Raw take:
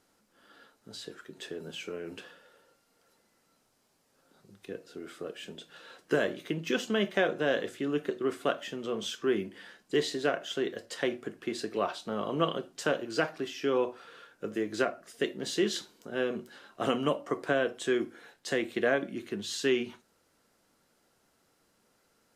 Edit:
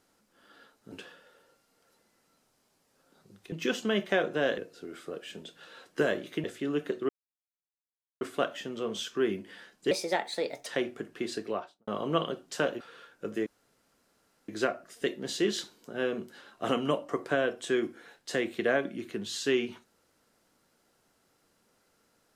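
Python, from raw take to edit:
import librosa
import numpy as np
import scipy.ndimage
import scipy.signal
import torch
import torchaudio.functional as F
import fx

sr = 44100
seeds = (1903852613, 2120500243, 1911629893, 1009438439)

y = fx.studio_fade_out(x, sr, start_s=11.63, length_s=0.51)
y = fx.edit(y, sr, fx.cut(start_s=0.92, length_s=1.19),
    fx.move(start_s=6.57, length_s=1.06, to_s=4.71),
    fx.insert_silence(at_s=8.28, length_s=1.12),
    fx.speed_span(start_s=9.98, length_s=0.95, speed=1.26),
    fx.cut(start_s=13.07, length_s=0.93),
    fx.insert_room_tone(at_s=14.66, length_s=1.02), tone=tone)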